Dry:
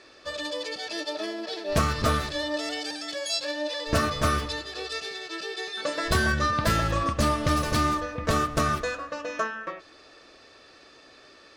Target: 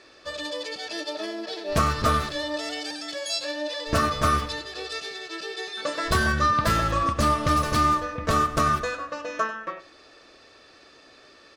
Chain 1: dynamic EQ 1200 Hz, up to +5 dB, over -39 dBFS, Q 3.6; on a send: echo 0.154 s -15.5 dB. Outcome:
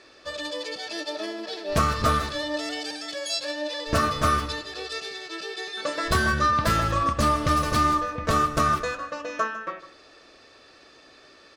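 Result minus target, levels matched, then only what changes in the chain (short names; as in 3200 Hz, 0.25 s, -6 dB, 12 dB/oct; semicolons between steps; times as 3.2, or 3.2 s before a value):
echo 59 ms late
change: echo 95 ms -15.5 dB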